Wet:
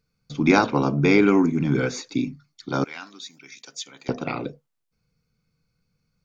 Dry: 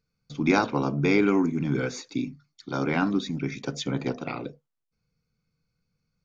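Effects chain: 2.84–4.09 s: differentiator; trim +4.5 dB

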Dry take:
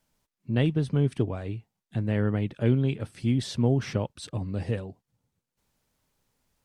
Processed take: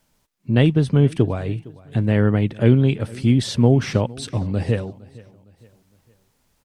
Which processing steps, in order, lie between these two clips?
feedback delay 460 ms, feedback 42%, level -22 dB; trim +8.5 dB

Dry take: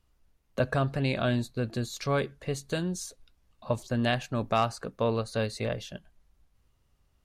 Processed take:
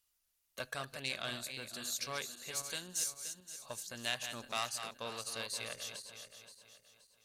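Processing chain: backward echo that repeats 262 ms, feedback 59%, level -8 dB; Chebyshev shaper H 4 -22 dB, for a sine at -13 dBFS; pre-emphasis filter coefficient 0.97; trim +4 dB

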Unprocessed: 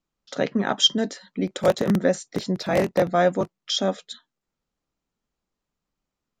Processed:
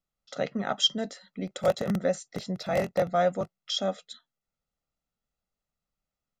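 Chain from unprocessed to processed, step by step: comb 1.5 ms, depth 51%; trim -7 dB

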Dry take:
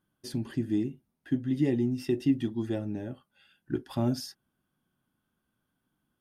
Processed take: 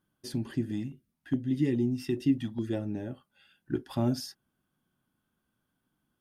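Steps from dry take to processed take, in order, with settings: 0.71–2.73 s: step-sequenced notch 4.8 Hz 380–1500 Hz

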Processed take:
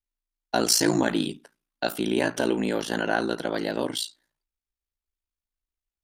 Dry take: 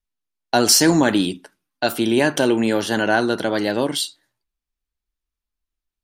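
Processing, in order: ring modulator 28 Hz; peaking EQ 77 Hz -7 dB 0.73 oct; trim -4 dB

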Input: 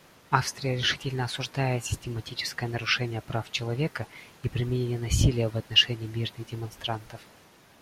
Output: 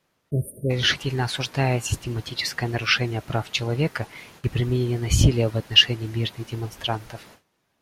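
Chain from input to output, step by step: gate with hold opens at -41 dBFS; spectral selection erased 0.31–0.70 s, 650–8500 Hz; trim +5 dB

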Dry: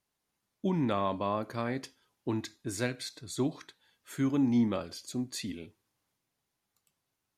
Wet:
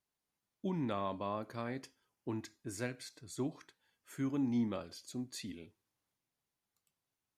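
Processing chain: 1.82–4.37 s: peaking EQ 3.8 kHz -8 dB 0.3 oct; trim -7 dB

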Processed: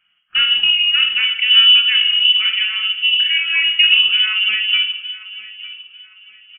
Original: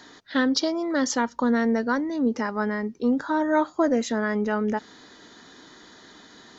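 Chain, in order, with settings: gate -37 dBFS, range -20 dB; tilt shelf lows +8 dB, about 1.4 kHz; feedback delay 902 ms, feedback 33%, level -17.5 dB; simulated room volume 350 m³, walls mixed, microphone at 0.87 m; frequency inversion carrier 3.2 kHz; trim +1 dB

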